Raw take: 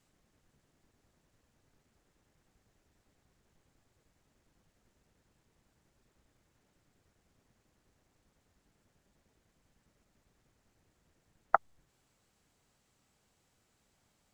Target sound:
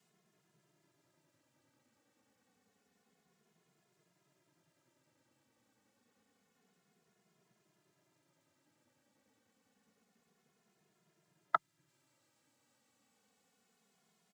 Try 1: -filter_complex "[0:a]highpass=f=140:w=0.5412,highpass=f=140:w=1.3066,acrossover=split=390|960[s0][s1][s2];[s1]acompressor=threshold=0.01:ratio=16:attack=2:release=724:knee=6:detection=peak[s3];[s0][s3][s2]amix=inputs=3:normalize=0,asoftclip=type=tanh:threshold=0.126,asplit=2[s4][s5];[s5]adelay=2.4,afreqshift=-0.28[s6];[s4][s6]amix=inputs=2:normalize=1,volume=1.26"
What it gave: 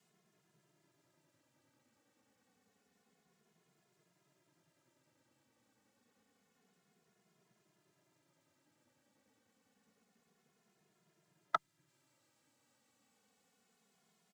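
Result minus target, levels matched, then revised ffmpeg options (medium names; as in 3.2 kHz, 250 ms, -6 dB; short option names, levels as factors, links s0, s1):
saturation: distortion +10 dB
-filter_complex "[0:a]highpass=f=140:w=0.5412,highpass=f=140:w=1.3066,acrossover=split=390|960[s0][s1][s2];[s1]acompressor=threshold=0.01:ratio=16:attack=2:release=724:knee=6:detection=peak[s3];[s0][s3][s2]amix=inputs=3:normalize=0,asoftclip=type=tanh:threshold=0.299,asplit=2[s4][s5];[s5]adelay=2.4,afreqshift=-0.28[s6];[s4][s6]amix=inputs=2:normalize=1,volume=1.26"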